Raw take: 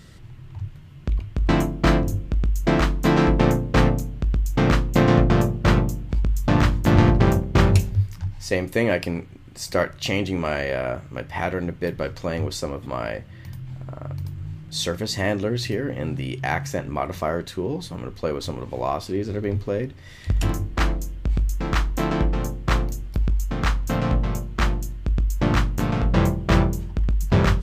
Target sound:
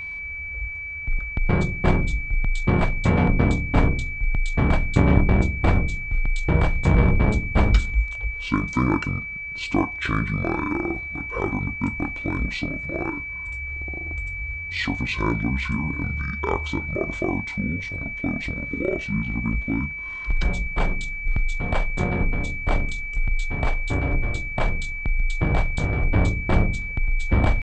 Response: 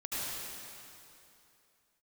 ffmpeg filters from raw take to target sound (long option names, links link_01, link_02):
-af "asetrate=24046,aresample=44100,atempo=1.83401,aeval=exprs='val(0)+0.0316*sin(2*PI*2300*n/s)':channel_layout=same"